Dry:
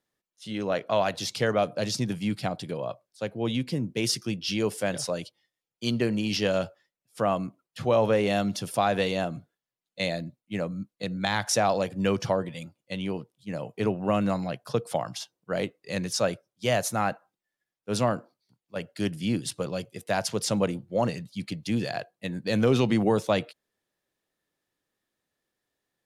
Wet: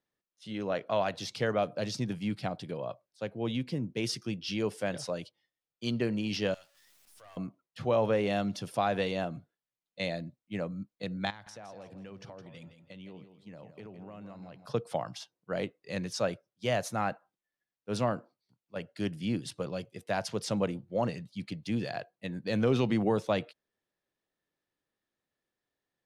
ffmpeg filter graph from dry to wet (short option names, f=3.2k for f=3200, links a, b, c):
-filter_complex "[0:a]asettb=1/sr,asplit=3[a][b][c];[a]atrim=end=6.544[d];[b]atrim=start=6.54:end=7.37,asetpts=PTS-STARTPTS,afade=t=in:d=0.004:c=qsin,afade=t=out:st=0.826:d=0.004:c=qsin,aeval=exprs='val(0)+0.5*0.00891*sgn(val(0))':c=same,aderivative,aeval=exprs='(tanh(158*val(0)+0.45)-tanh(0.45))/158':c=same[e];[c]atrim=start=7.366[f];[d][e]acrossfade=d=0.004:c1=hsin:c2=qsin[g];[g][f]acrossfade=d=0.004:c1=qsin:c2=hsin,asettb=1/sr,asplit=3[h][i][j];[h]atrim=end=11.304[k];[i]atrim=start=11.3:end=14.66,asetpts=PTS-STARTPTS,afade=t=in:d=0.004:c=qsin,afade=t=out:st=3.356:d=0.004:c=qsin,highshelf=f=11k:g=-6.5,acompressor=threshold=-40dB:ratio=6:attack=3.2:release=140:knee=1:detection=peak,aecho=1:1:164|328|492:0.316|0.098|0.0304,atrim=end_sample=148176[l];[j]atrim=start=14.656[m];[k][l]acrossfade=d=0.004:c1=hsin:c2=qsin[n];[n][m]acrossfade=d=0.004:c1=qsin:c2=hsin,highshelf=f=7.8k:g=-11.5,bandreject=f=7.1k:w=27,volume=-4.5dB"